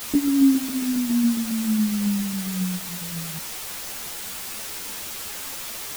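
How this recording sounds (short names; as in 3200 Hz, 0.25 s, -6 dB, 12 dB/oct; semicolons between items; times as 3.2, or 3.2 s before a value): tremolo saw down 7.3 Hz, depth 40%; a quantiser's noise floor 6-bit, dither triangular; a shimmering, thickened sound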